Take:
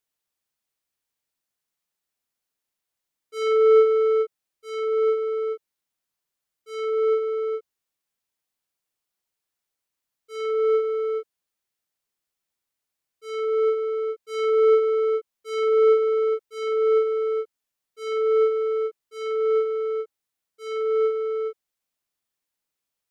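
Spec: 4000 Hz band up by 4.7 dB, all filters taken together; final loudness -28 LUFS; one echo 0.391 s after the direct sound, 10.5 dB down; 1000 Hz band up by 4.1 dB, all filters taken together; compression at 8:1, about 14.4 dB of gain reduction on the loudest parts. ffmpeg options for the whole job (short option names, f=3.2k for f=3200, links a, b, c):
-af "equalizer=f=1k:t=o:g=6,equalizer=f=4k:t=o:g=6,acompressor=threshold=-28dB:ratio=8,aecho=1:1:391:0.299,volume=2dB"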